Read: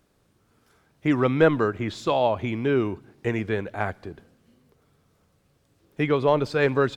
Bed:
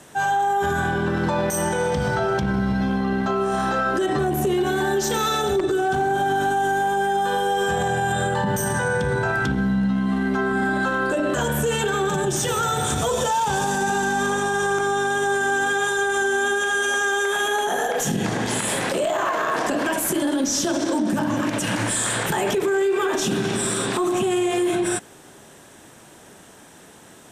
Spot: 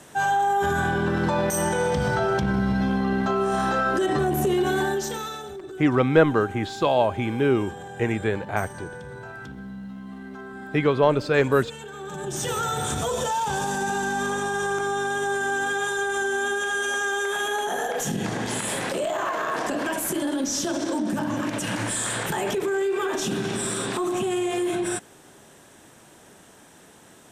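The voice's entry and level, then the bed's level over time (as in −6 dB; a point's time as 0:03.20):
4.75 s, +1.5 dB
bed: 0:04.80 −1 dB
0:05.54 −16.5 dB
0:11.93 −16.5 dB
0:12.47 −4 dB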